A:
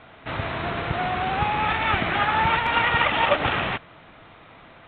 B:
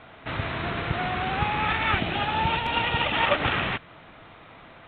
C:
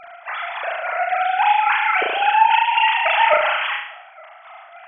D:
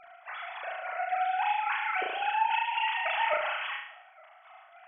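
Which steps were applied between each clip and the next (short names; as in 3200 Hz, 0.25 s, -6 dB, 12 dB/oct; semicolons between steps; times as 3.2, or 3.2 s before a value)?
spectral gain 1.99–3.13, 950–2400 Hz -7 dB; dynamic EQ 730 Hz, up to -4 dB, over -37 dBFS, Q 0.93
sine-wave speech; tremolo saw down 3.6 Hz, depth 55%; flutter echo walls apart 6.2 m, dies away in 0.65 s; gain +8.5 dB
resonator 370 Hz, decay 0.16 s, harmonics all, mix 60%; gain -6 dB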